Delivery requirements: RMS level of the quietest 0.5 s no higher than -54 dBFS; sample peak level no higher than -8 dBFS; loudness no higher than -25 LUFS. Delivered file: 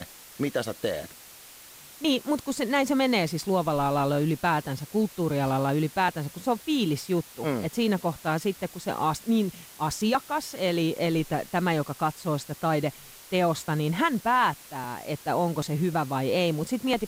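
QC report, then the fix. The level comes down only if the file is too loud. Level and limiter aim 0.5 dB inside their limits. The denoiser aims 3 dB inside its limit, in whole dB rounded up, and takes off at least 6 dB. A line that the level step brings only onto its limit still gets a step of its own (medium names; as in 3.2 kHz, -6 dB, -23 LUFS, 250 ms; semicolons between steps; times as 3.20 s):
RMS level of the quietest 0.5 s -48 dBFS: fail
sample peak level -11.5 dBFS: pass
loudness -27.0 LUFS: pass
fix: noise reduction 9 dB, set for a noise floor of -48 dBFS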